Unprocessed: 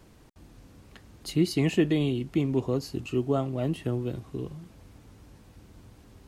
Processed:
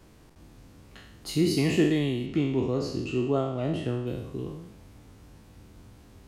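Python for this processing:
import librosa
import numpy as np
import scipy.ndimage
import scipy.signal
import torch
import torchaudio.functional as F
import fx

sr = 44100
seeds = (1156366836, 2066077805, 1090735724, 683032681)

y = fx.spec_trails(x, sr, decay_s=0.82)
y = fx.lowpass(y, sr, hz=7000.0, slope=12, at=(2.26, 4.07))
y = y * librosa.db_to_amplitude(-1.5)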